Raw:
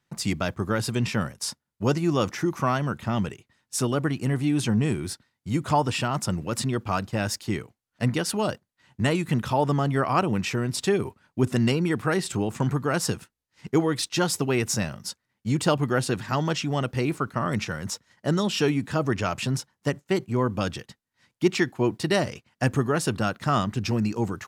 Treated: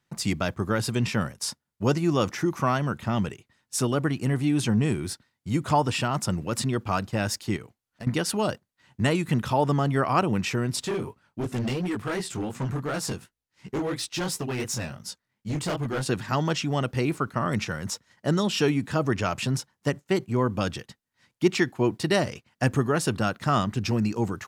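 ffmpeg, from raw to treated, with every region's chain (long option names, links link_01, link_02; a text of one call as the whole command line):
ffmpeg -i in.wav -filter_complex "[0:a]asettb=1/sr,asplit=3[link_01][link_02][link_03];[link_01]atrim=end=7.564[link_04];[link_02]atrim=start=7.56:end=8.07,asetpts=PTS-STARTPTS,afade=type=in:duration=0.004:curve=qsin,afade=type=out:start_time=0.506:duration=0.004:curve=qsin,acompressor=threshold=-34dB:ratio=5:attack=3.2:release=140:knee=1:detection=peak,asoftclip=type=hard:threshold=-28.5dB[link_05];[link_03]atrim=start=8.066[link_06];[link_04][link_05]acrossfade=duration=0.004:curve1=hsin:curve2=qsin[link_07];[link_07][link_06]acrossfade=duration=0.004:curve1=qsin:curve2=hsin,asettb=1/sr,asplit=3[link_08][link_09][link_10];[link_08]atrim=end=10.834[link_11];[link_09]atrim=start=10.83:end=16.06,asetpts=PTS-STARTPTS,afade=type=in:duration=0.004:curve=qsin,afade=type=out:start_time=5.226:duration=0.004:curve=qsin,flanger=delay=15.5:depth=7.8:speed=2.8,asoftclip=type=hard:threshold=-24.5dB[link_12];[link_10]atrim=start=16.056[link_13];[link_11][link_12]acrossfade=duration=0.004:curve1=hsin:curve2=qsin[link_14];[link_14][link_13]acrossfade=duration=0.004:curve1=qsin:curve2=hsin" out.wav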